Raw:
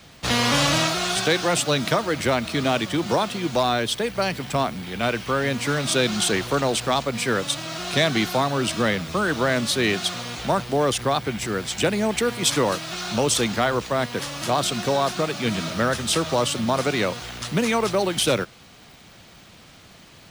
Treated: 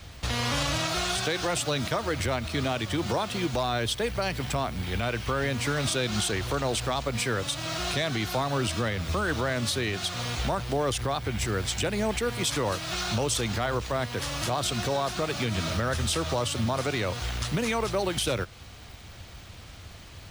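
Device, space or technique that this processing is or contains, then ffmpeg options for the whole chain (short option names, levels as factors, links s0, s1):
car stereo with a boomy subwoofer: -af "lowshelf=f=120:t=q:w=1.5:g=10.5,alimiter=limit=0.126:level=0:latency=1:release=165"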